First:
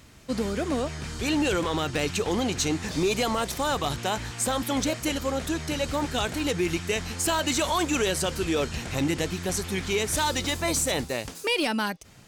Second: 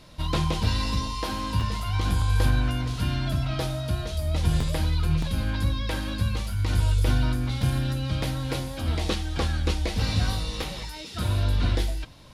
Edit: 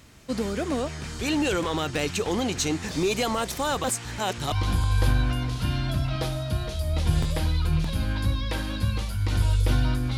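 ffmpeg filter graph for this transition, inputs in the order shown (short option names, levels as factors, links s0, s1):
-filter_complex "[0:a]apad=whole_dur=10.17,atrim=end=10.17,asplit=2[s0][s1];[s0]atrim=end=3.842[s2];[s1]atrim=start=3.838:end=4.522,asetpts=PTS-STARTPTS,areverse[s3];[1:a]atrim=start=1.898:end=7.55[s4];[s2][s3]acrossfade=d=0.004:c1=hsin:c2=hsin[s5];[s5][s4]acrossfade=d=0.004:c1=hsin:c2=hsin"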